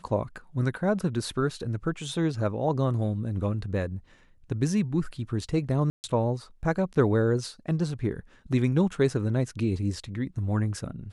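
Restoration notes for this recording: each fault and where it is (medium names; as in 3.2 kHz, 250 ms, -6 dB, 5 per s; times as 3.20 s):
5.90–6.04 s: dropout 139 ms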